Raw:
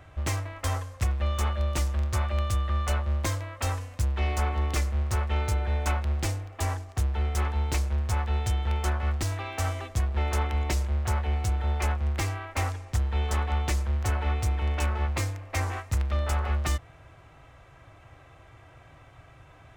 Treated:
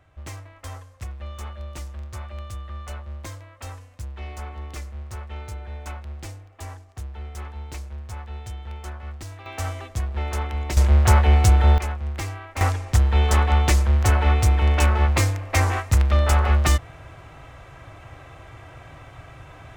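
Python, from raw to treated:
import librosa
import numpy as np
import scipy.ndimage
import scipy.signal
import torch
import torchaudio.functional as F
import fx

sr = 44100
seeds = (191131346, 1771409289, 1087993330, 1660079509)

y = fx.gain(x, sr, db=fx.steps((0.0, -8.0), (9.46, 0.0), (10.77, 12.0), (11.78, -1.0), (12.61, 9.0)))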